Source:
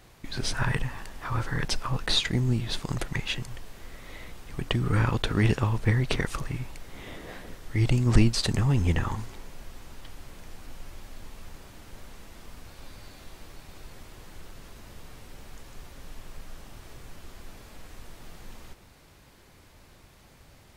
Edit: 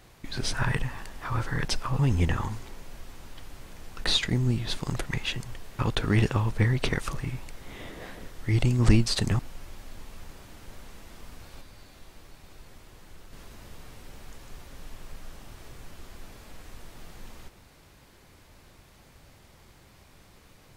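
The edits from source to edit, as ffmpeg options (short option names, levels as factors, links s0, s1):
-filter_complex "[0:a]asplit=7[s0][s1][s2][s3][s4][s5][s6];[s0]atrim=end=1.992[s7];[s1]atrim=start=8.658:end=10.642[s8];[s2]atrim=start=1.988:end=3.812[s9];[s3]atrim=start=5.058:end=8.662[s10];[s4]atrim=start=10.638:end=12.862[s11];[s5]atrim=start=12.858:end=14.582,asetpts=PTS-STARTPTS,volume=0.631[s12];[s6]atrim=start=14.578[s13];[s7][s8]acrossfade=d=0.004:c1=hsin:c2=hsin[s14];[s14][s9]acrossfade=d=0.004:c1=hsin:c2=hsin[s15];[s15][s10]acrossfade=d=0.004:c1=hsin:c2=hsin[s16];[s16][s11]acrossfade=d=0.004:c1=hsin:c2=hsin[s17];[s17][s12]acrossfade=d=0.004:c1=hsin:c2=hsin[s18];[s18][s13]acrossfade=d=0.004:c1=hsin:c2=hsin"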